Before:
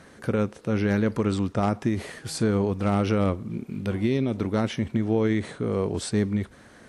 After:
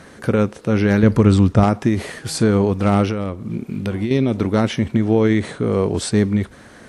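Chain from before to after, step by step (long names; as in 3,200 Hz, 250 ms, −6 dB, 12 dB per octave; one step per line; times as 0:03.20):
0:01.03–0:01.64: low-shelf EQ 160 Hz +11 dB
0:03.04–0:04.11: downward compressor 12 to 1, threshold −26 dBFS, peak gain reduction 9.5 dB
level +7.5 dB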